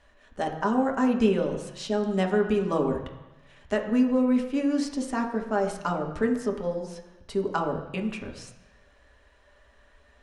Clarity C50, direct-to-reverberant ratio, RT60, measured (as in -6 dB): 8.0 dB, 1.0 dB, 1.1 s